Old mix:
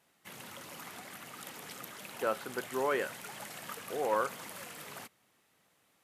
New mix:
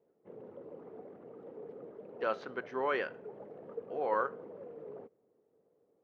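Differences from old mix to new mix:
background: add low-pass with resonance 450 Hz, resonance Q 5.2
master: add low-shelf EQ 230 Hz −7.5 dB

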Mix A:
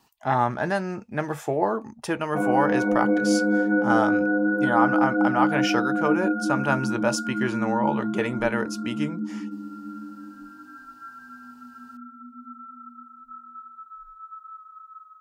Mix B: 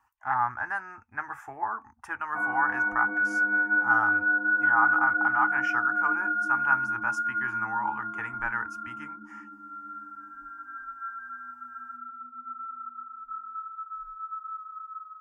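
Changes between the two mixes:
speech −4.0 dB
master: add drawn EQ curve 100 Hz 0 dB, 170 Hz −28 dB, 260 Hz −14 dB, 560 Hz −25 dB, 820 Hz 0 dB, 1,500 Hz +6 dB, 2,700 Hz −10 dB, 4,000 Hz −24 dB, 6,000 Hz −12 dB

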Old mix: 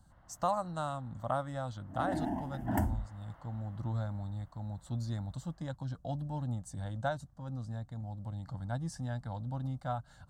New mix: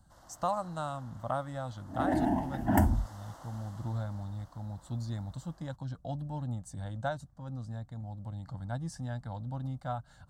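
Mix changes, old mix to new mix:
first sound: remove transistor ladder low-pass 2,800 Hz, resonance 45%
second sound +6.5 dB

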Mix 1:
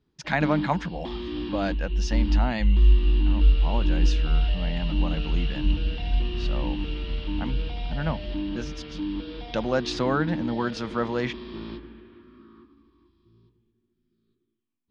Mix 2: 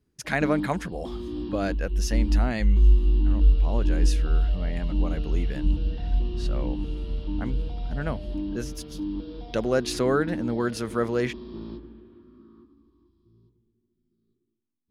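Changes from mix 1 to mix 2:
speech: remove loudspeaker in its box 120–5,700 Hz, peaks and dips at 160 Hz +7 dB, 410 Hz −8 dB, 890 Hz +8 dB, 3,500 Hz +4 dB
background: add parametric band 2,200 Hz −15 dB 1.8 octaves

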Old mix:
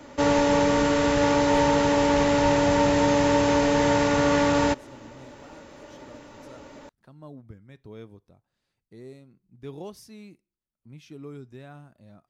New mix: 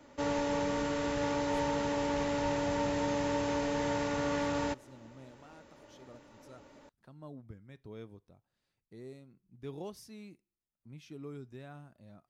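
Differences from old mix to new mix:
speech −4.0 dB
background −11.5 dB

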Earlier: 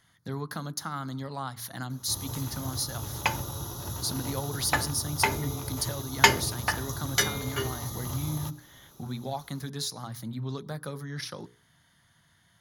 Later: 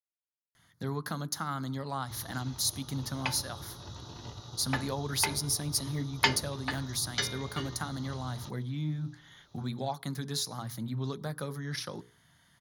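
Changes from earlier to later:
speech: entry +0.55 s
background: add transistor ladder low-pass 5,400 Hz, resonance 40%

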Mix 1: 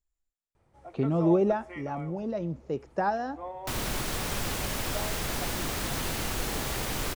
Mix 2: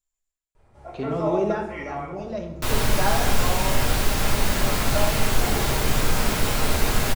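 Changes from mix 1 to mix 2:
speech: add spectral tilt +2.5 dB per octave
second sound: entry −1.05 s
reverb: on, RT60 0.75 s

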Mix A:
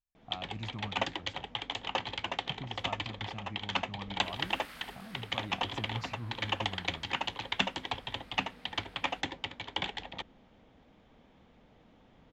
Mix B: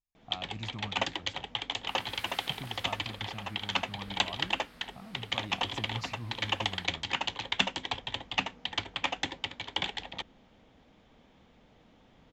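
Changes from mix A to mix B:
second sound: entry −2.35 s
master: add high-shelf EQ 3,500 Hz +7 dB

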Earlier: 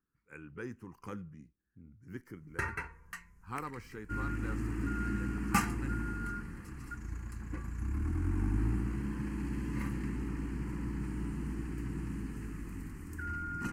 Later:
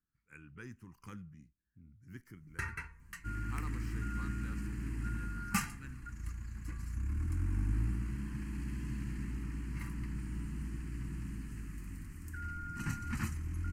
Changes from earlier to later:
second sound: entry −0.85 s
master: add parametric band 550 Hz −14.5 dB 2 octaves

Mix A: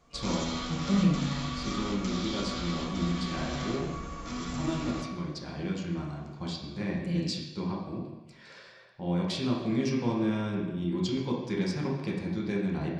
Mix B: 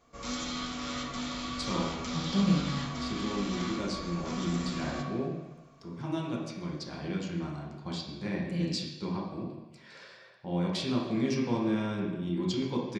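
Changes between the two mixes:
speech: entry +1.45 s
master: add low-shelf EQ 78 Hz −8.5 dB

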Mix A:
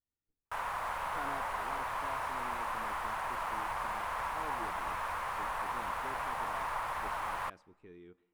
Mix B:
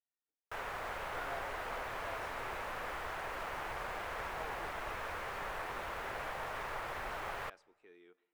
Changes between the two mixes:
speech: add high-pass filter 530 Hz 12 dB per octave
background: add graphic EQ with 15 bands 400 Hz +8 dB, 1,000 Hz −10 dB, 10,000 Hz −7 dB

